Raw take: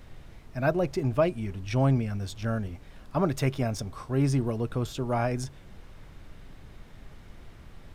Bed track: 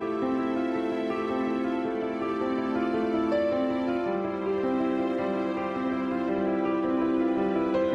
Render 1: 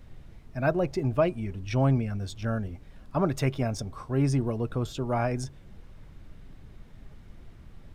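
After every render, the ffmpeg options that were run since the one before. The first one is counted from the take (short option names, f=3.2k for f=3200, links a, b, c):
-af "afftdn=nr=6:nf=-49"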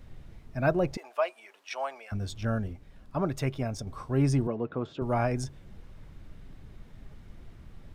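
-filter_complex "[0:a]asettb=1/sr,asplit=3[a][b][c];[a]atrim=end=0.974[d];[b]atrim=start=0.97:end=2.12,asetpts=PTS-STARTPTS,afade=t=in:d=0.004:c=qsin,afade=t=out:st=1.146:d=0.004:c=qsin,highpass=f=660:w=0.5412,highpass=f=660:w=1.3066[e];[c]atrim=start=2.116[f];[d][e]acrossfade=d=0.004:c1=hsin:c2=qsin[g];[g][f]acrossfade=d=0.004:c1=qsin:c2=hsin,asettb=1/sr,asplit=3[h][i][j];[h]atrim=end=4.474[k];[i]atrim=start=4.47:end=5.02,asetpts=PTS-STARTPTS,afade=t=in:d=0.004:c=qsin,afade=t=out:st=0.546:d=0.004:c=qsin,highpass=190,lowpass=2.3k[l];[j]atrim=start=5.016[m];[k][l]acrossfade=d=0.004:c1=hsin:c2=qsin[n];[n][m]acrossfade=d=0.004:c1=qsin:c2=hsin,asplit=3[o][p][q];[o]atrim=end=2.732[r];[p]atrim=start=2.728:end=3.872,asetpts=PTS-STARTPTS,volume=-3.5dB[s];[q]atrim=start=3.868[t];[r][s]acrossfade=d=0.004:c1=hsin:c2=hsin[u];[u][t]acrossfade=d=0.004:c1=hsin:c2=hsin"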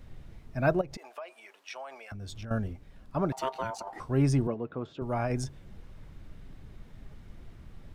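-filter_complex "[0:a]asettb=1/sr,asplit=3[a][b][c];[a]atrim=end=0.814[d];[b]atrim=start=0.81:end=2.51,asetpts=PTS-STARTPTS,afade=t=in:d=0.004:c=qsin,afade=t=out:st=1.696:d=0.004:c=qsin,acompressor=threshold=-37dB:ratio=10:attack=3.2:release=140:knee=1:detection=peak[e];[c]atrim=start=2.506[f];[d][e]acrossfade=d=0.004:c1=hsin:c2=qsin[g];[g][f]acrossfade=d=0.004:c1=qsin:c2=hsin,asettb=1/sr,asplit=3[h][i][j];[h]atrim=end=3.324[k];[i]atrim=start=3.32:end=4,asetpts=PTS-STARTPTS,afade=t=in:d=0.004:c=qsin,afade=t=out:st=0.676:d=0.004:c=qsin,aeval=exprs='val(0)*sin(2*PI*790*n/s)':c=same[l];[j]atrim=start=3.996[m];[k][l]acrossfade=d=0.004:c1=hsin:c2=qsin[n];[n][m]acrossfade=d=0.004:c1=qsin:c2=hsin,asplit=3[o][p][q];[o]atrim=end=4.542[r];[p]atrim=start=4.538:end=5.302,asetpts=PTS-STARTPTS,volume=-3.5dB[s];[q]atrim=start=5.298[t];[r][s]acrossfade=d=0.004:c1=hsin:c2=hsin[u];[u][t]acrossfade=d=0.004:c1=hsin:c2=hsin"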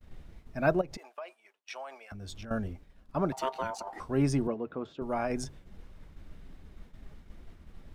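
-af "agate=range=-33dB:threshold=-43dB:ratio=3:detection=peak,equalizer=f=120:t=o:w=0.25:g=-15"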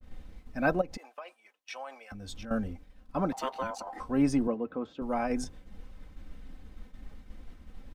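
-af "aecho=1:1:3.9:0.57,adynamicequalizer=threshold=0.00398:dfrequency=1900:dqfactor=0.7:tfrequency=1900:tqfactor=0.7:attack=5:release=100:ratio=0.375:range=1.5:mode=cutabove:tftype=highshelf"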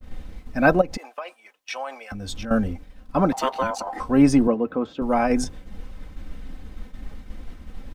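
-af "volume=10dB"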